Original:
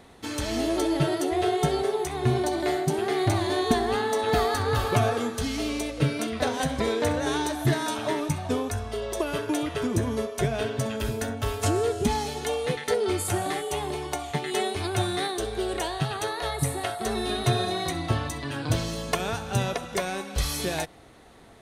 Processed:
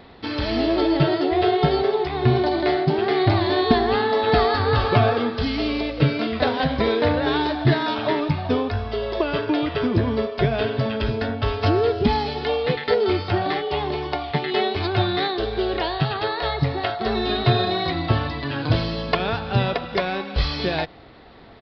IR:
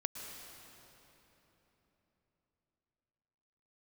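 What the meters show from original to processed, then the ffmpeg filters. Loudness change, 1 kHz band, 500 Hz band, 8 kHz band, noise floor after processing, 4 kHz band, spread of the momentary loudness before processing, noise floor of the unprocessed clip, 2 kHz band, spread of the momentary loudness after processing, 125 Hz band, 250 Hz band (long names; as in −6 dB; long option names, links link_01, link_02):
+5.5 dB, +5.5 dB, +5.5 dB, below −20 dB, −34 dBFS, +5.5 dB, 5 LU, −39 dBFS, +5.5 dB, 6 LU, +5.5 dB, +5.5 dB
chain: -af "aresample=11025,aresample=44100,volume=5.5dB"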